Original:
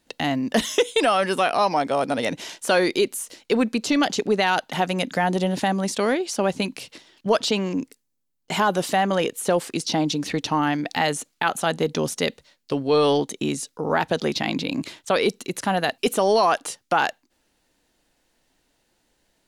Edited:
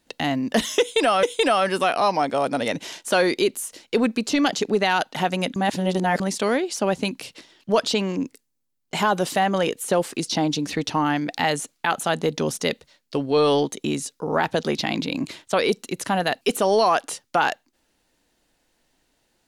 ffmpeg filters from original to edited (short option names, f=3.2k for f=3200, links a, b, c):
-filter_complex "[0:a]asplit=4[a][b][c][d];[a]atrim=end=1.232[e];[b]atrim=start=0.798:end=5.132[f];[c]atrim=start=5.128:end=5.772,asetpts=PTS-STARTPTS,areverse[g];[d]atrim=start=5.768[h];[e][f]acrossfade=d=0.004:c1=hsin:c2=hsin[i];[i][g]acrossfade=d=0.004:c1=hsin:c2=hsin[j];[j][h]acrossfade=d=0.004:c1=hsin:c2=hsin"